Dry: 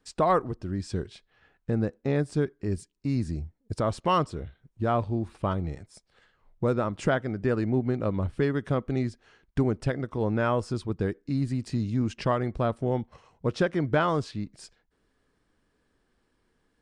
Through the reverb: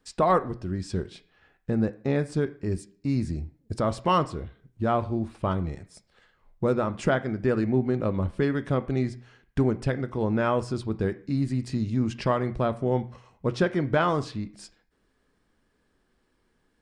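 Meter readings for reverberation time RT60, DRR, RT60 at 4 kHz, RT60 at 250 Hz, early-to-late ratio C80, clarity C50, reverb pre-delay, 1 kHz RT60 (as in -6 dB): 0.50 s, 10.0 dB, 0.45 s, 0.55 s, 21.0 dB, 17.0 dB, 3 ms, 0.50 s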